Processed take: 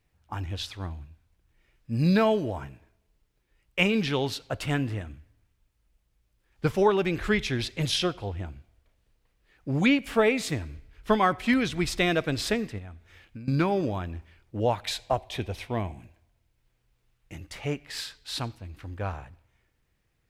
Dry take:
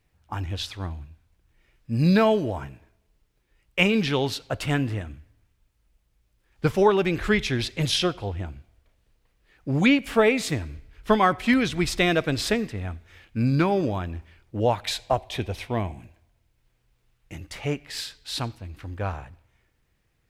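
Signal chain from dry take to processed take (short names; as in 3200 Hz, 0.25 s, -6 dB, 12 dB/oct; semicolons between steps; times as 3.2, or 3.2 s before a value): 12.78–13.48 compressor 16:1, threshold -36 dBFS, peak gain reduction 18 dB; 17.87–18.38 dynamic EQ 1200 Hz, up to +5 dB, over -52 dBFS, Q 1; gain -3 dB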